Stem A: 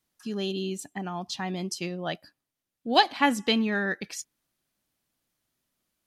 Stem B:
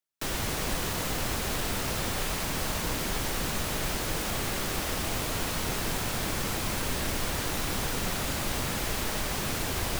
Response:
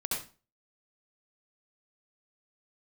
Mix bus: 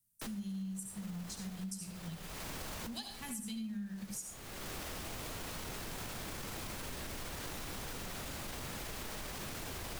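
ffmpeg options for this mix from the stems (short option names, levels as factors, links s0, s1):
-filter_complex "[0:a]firequalizer=gain_entry='entry(200,0);entry(290,-30);entry(8600,6)':delay=0.05:min_phase=1,flanger=delay=7.7:depth=1.1:regen=-47:speed=0.86:shape=triangular,volume=0.944,asplit=3[s0][s1][s2];[s1]volume=0.596[s3];[1:a]alimiter=limit=0.0708:level=0:latency=1:release=18,volume=0.422[s4];[s2]apad=whole_len=440914[s5];[s4][s5]sidechaincompress=threshold=0.00224:ratio=8:attack=9.7:release=464[s6];[2:a]atrim=start_sample=2205[s7];[s3][s7]afir=irnorm=-1:irlink=0[s8];[s0][s6][s8]amix=inputs=3:normalize=0,acompressor=threshold=0.0112:ratio=6"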